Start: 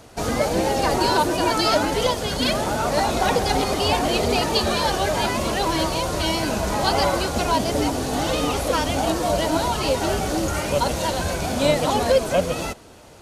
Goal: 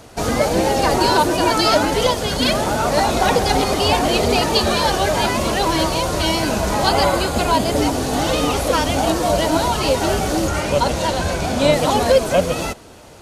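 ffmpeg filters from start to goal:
-filter_complex "[0:a]asettb=1/sr,asplit=3[s0][s1][s2];[s0]atrim=end=6.894[s3];[s1]atrim=start=6.89:end=7.76,asetpts=PTS-STARTPTS,afade=t=in:d=0.004:c=qsin,afade=t=out:st=0.866:d=0.004:c=qsin,bandreject=f=5700:w=7.2[s4];[s2]atrim=start=7.756[s5];[s3][s4]acrossfade=d=0.004:c1=hsin:c2=qsin[s6];[s6][s5]acrossfade=d=0.004:c1=qsin:c2=hsin,asettb=1/sr,asplit=3[s7][s8][s9];[s7]atrim=end=10.484[s10];[s8]atrim=start=10.48:end=11.73,asetpts=PTS-STARTPTS,afade=t=in:d=0.004:c=qsin,afade=t=out:st=1.246:d=0.004:c=qsin,highshelf=f=11000:g=-10.5[s11];[s9]atrim=start=11.726[s12];[s10][s11]acrossfade=d=0.004:c1=hsin:c2=qsin[s13];[s13][s12]acrossfade=d=0.004:c1=qsin:c2=hsin,volume=1.58"

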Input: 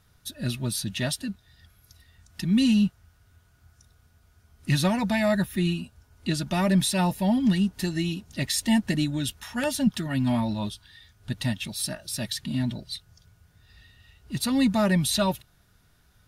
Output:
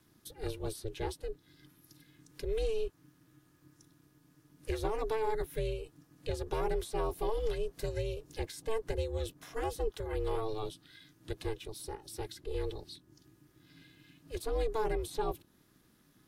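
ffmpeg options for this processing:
-filter_complex "[0:a]acrossover=split=140|410|1100[s0][s1][s2][s3];[s0]acompressor=threshold=0.00794:ratio=4[s4];[s1]acompressor=threshold=0.0398:ratio=4[s5];[s2]acompressor=threshold=0.0316:ratio=4[s6];[s3]acompressor=threshold=0.00562:ratio=4[s7];[s4][s5][s6][s7]amix=inputs=4:normalize=0,aeval=exprs='val(0)*sin(2*PI*220*n/s)':c=same,highshelf=f=9500:g=5.5,volume=0.75"

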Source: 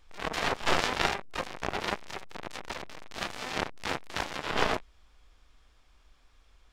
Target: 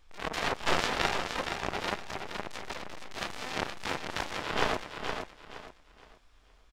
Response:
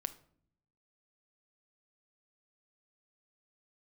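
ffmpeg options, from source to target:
-af "aecho=1:1:469|938|1407|1876:0.473|0.137|0.0398|0.0115,volume=0.841"

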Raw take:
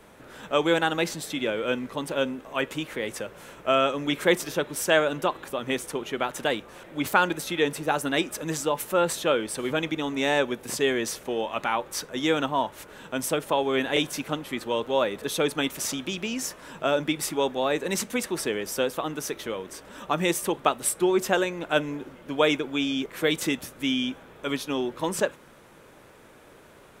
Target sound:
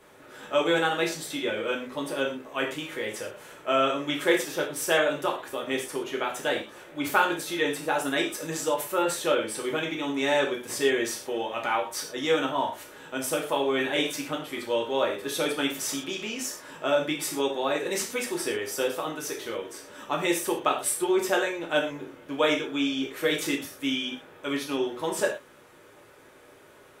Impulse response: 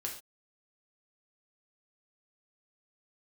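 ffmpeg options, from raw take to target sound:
-filter_complex "[0:a]lowshelf=f=130:g=-10[s0];[1:a]atrim=start_sample=2205,asetrate=48510,aresample=44100[s1];[s0][s1]afir=irnorm=-1:irlink=0"

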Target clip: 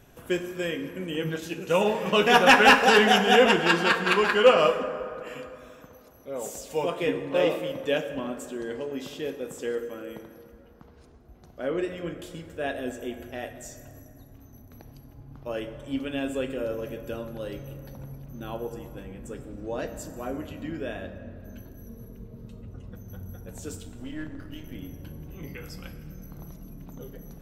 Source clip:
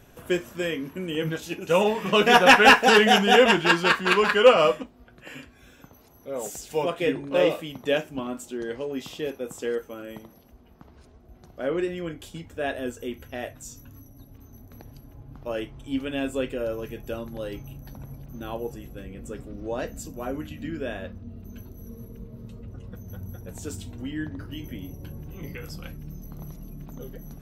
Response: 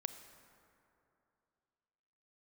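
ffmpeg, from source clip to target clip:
-filter_complex "[0:a]asettb=1/sr,asplit=3[s0][s1][s2];[s0]atrim=end=23.784[s3];[s1]atrim=start=23.78:end=24.75,asetpts=PTS-STARTPTS,afade=t=in:d=0.004:c=qsin,afade=t=out:st=0.966:d=0.004:c=qsin,aeval=exprs='if(lt(val(0),0),0.447*val(0),val(0))':c=same[s4];[s2]atrim=start=24.746[s5];[s3][s4]acrossfade=d=0.004:c1=hsin:c2=qsin[s6];[s6][s5]acrossfade=d=0.004:c1=qsin:c2=hsin[s7];[1:a]atrim=start_sample=2205[s8];[s7][s8]afir=irnorm=-1:irlink=0"

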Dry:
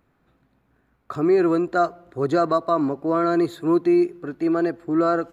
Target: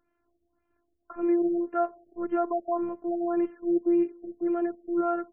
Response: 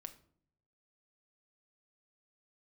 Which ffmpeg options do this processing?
-af "afftfilt=real='hypot(re,im)*cos(PI*b)':imag='0':win_size=512:overlap=0.75,afftfilt=real='re*lt(b*sr/1024,660*pow(3400/660,0.5+0.5*sin(2*PI*1.8*pts/sr)))':imag='im*lt(b*sr/1024,660*pow(3400/660,0.5+0.5*sin(2*PI*1.8*pts/sr)))':win_size=1024:overlap=0.75,volume=0.531"

